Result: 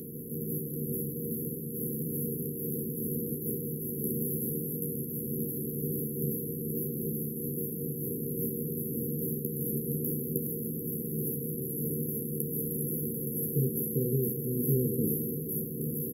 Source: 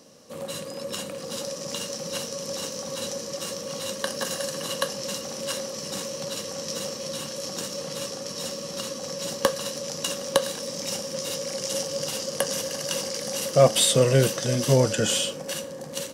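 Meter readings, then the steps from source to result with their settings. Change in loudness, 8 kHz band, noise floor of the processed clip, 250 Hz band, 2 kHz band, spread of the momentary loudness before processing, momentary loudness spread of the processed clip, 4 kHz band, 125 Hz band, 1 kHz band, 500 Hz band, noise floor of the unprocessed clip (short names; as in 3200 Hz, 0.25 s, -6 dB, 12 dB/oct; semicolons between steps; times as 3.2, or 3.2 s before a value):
-5.5 dB, -10.5 dB, -37 dBFS, +1.5 dB, under -40 dB, 12 LU, 5 LU, under -40 dB, -2.0 dB, under -40 dB, -10.0 dB, -37 dBFS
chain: per-bin compression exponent 0.4; HPF 230 Hz 6 dB/oct; high shelf 7600 Hz +5.5 dB; fixed phaser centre 1400 Hz, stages 4; FFT band-reject 510–11000 Hz; hum 60 Hz, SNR 30 dB; doubler 13 ms -5 dB; on a send: feedback echo 0.168 s, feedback 26%, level -11.5 dB; on the sum: noise-modulated level, depth 60%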